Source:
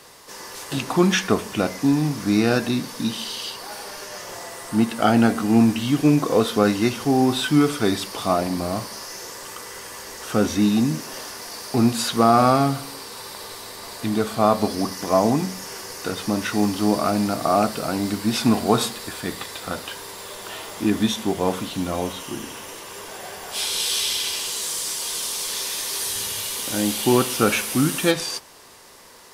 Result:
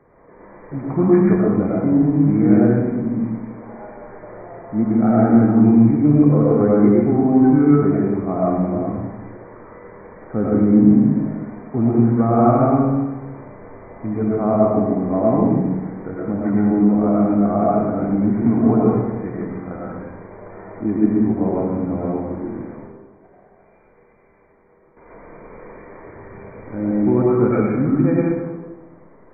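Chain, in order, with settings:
linear-phase brick-wall low-pass 2,400 Hz
tilt shelving filter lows +9.5 dB, about 900 Hz
0:22.75–0:24.97: noise gate −31 dBFS, range −16 dB
convolution reverb RT60 1.3 s, pre-delay 60 ms, DRR −5 dB
level −8.5 dB

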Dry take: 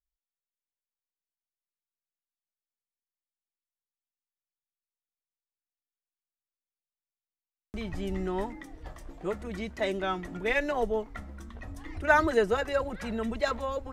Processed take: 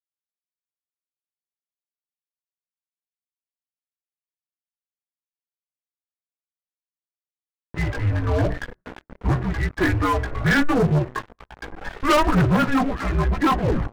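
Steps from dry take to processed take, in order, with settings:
turntable brake at the end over 0.34 s
hum removal 83.22 Hz, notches 12
single-sideband voice off tune −290 Hz 240–2,400 Hz
noise gate −51 dBFS, range −24 dB
multi-voice chorus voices 2, 0.32 Hz, delay 17 ms, depth 1.7 ms
leveller curve on the samples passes 5

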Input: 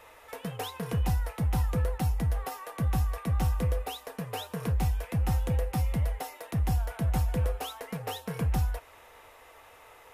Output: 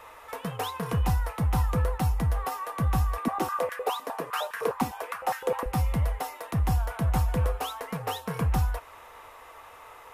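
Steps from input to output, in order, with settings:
parametric band 1,100 Hz +7.5 dB 0.75 octaves
0:03.18–0:05.66: high-pass on a step sequencer 9.8 Hz 260–1,700 Hz
level +2 dB

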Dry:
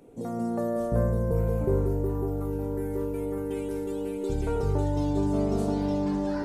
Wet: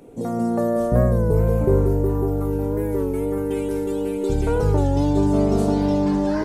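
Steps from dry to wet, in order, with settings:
wow of a warped record 33 1/3 rpm, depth 100 cents
level +7.5 dB

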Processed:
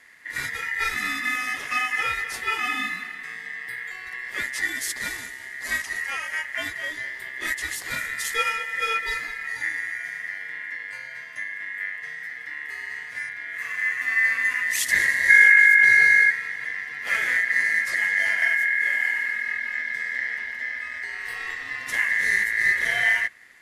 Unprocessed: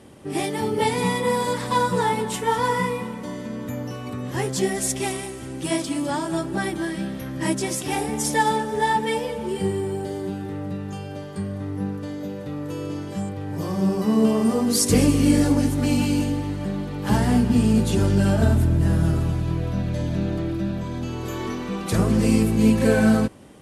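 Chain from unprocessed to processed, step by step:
0:15.28–0:16.30: low shelf with overshoot 130 Hz +12.5 dB, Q 3
frequency shifter −330 Hz
ring modulation 1,900 Hz
level −1.5 dB

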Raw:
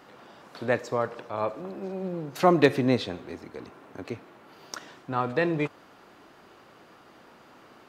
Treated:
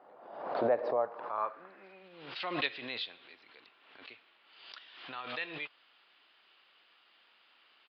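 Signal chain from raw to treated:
band-pass filter sweep 670 Hz → 3,100 Hz, 0:00.97–0:02.14
downsampling to 11,025 Hz
background raised ahead of every attack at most 59 dB per second

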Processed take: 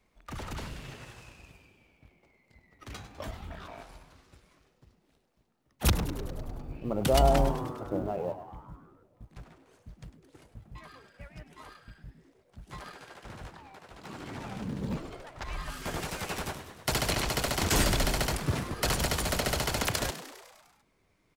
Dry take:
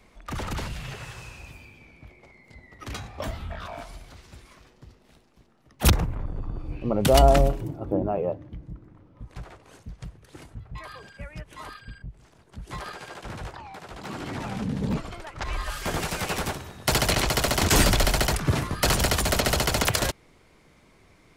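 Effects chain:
mu-law and A-law mismatch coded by A
echo with shifted repeats 101 ms, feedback 64%, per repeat +110 Hz, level −13 dB
level −6 dB

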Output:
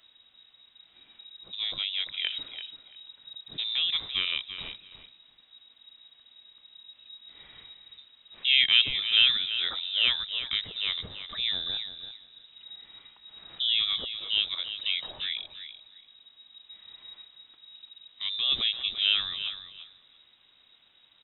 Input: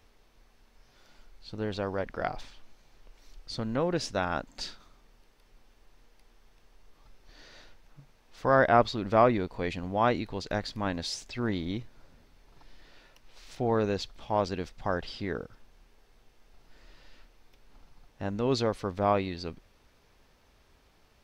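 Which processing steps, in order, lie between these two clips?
repeating echo 339 ms, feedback 17%, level −11 dB
voice inversion scrambler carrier 3,800 Hz

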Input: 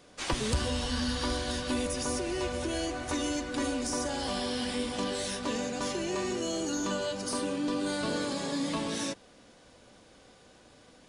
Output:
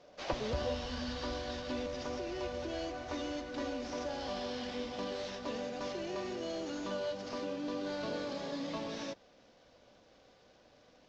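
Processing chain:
variable-slope delta modulation 32 kbit/s
parametric band 610 Hz +13.5 dB 0.78 octaves, from 0:00.74 +6.5 dB
level −8.5 dB

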